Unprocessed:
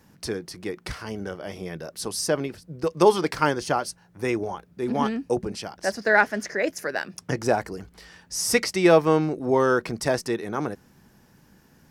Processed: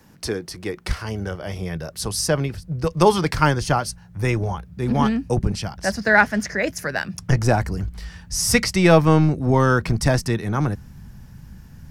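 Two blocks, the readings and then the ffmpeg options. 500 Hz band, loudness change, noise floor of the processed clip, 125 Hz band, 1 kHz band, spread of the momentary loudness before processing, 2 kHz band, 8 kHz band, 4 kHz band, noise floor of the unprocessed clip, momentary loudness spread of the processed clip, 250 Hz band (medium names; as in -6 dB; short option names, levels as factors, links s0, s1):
+0.5 dB, +4.0 dB, -46 dBFS, +13.5 dB, +3.5 dB, 15 LU, +4.0 dB, +4.5 dB, +4.5 dB, -58 dBFS, 13 LU, +5.0 dB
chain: -filter_complex "[0:a]asubboost=boost=11.5:cutoff=110,acrossover=split=230|3700[s0][s1][s2];[s0]aeval=exprs='clip(val(0),-1,0.0422)':c=same[s3];[s3][s1][s2]amix=inputs=3:normalize=0,volume=1.68"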